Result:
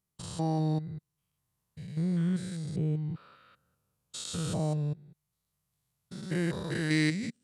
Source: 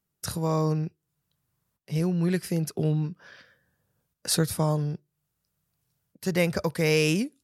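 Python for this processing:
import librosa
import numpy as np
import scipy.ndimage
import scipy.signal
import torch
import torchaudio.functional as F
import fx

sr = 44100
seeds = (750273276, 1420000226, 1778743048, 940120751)

y = fx.spec_steps(x, sr, hold_ms=200)
y = fx.formant_shift(y, sr, semitones=-4)
y = F.gain(torch.from_numpy(y), -3.0).numpy()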